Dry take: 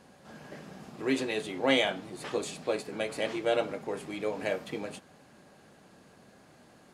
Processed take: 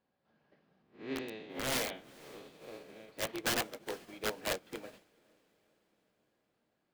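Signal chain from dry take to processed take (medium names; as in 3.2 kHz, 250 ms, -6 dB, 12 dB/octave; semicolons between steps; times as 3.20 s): 0.82–3.09 s: spectral blur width 210 ms; low-pass 4.6 kHz 24 dB/octave; hum notches 50/100/150/200/250 Hz; integer overflow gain 24 dB; echo that smears into a reverb 458 ms, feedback 57%, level -11 dB; upward expansion 2.5:1, over -45 dBFS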